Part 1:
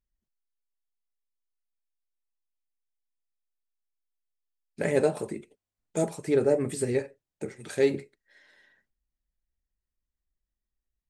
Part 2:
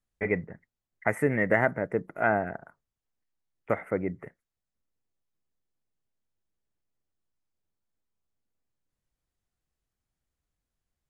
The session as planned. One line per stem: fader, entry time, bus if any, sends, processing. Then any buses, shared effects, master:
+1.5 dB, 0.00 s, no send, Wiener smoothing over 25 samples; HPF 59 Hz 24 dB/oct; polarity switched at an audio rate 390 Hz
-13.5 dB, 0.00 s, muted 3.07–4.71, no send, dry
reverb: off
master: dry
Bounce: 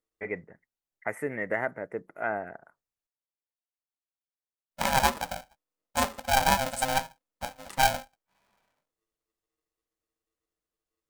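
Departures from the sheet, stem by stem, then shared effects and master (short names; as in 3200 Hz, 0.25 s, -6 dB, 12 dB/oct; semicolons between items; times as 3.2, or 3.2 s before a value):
stem 2 -13.5 dB -> -5.5 dB; master: extra tone controls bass -8 dB, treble +2 dB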